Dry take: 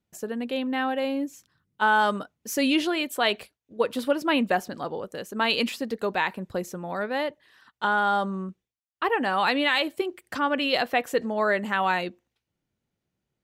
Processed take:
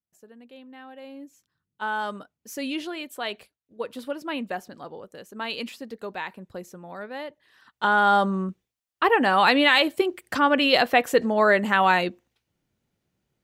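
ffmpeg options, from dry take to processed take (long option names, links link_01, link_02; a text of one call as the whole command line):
ffmpeg -i in.wav -af "volume=5dB,afade=type=in:start_time=0.86:duration=1.04:silence=0.298538,afade=type=in:start_time=7.28:duration=0.85:silence=0.237137" out.wav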